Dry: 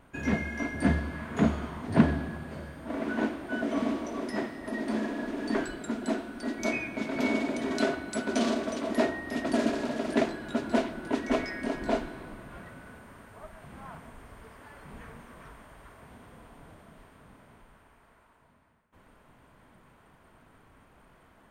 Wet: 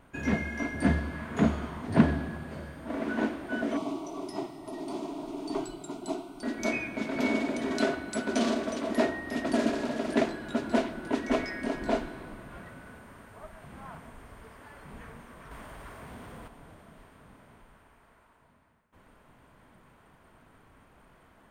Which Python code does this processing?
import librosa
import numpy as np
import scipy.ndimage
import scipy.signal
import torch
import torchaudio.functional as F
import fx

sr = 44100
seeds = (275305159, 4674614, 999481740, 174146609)

y = fx.fixed_phaser(x, sr, hz=340.0, stages=8, at=(3.77, 6.43))
y = fx.law_mismatch(y, sr, coded='mu', at=(15.51, 16.48))